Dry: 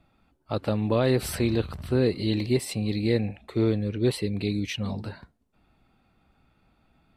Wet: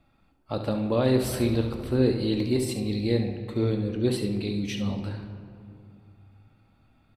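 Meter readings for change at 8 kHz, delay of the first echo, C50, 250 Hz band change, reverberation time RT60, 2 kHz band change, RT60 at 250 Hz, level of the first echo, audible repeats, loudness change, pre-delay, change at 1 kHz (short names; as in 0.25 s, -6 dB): -0.5 dB, 70 ms, 6.5 dB, +0.5 dB, 2.6 s, -3.0 dB, 3.1 s, -10.0 dB, 1, 0.0 dB, 4 ms, -0.5 dB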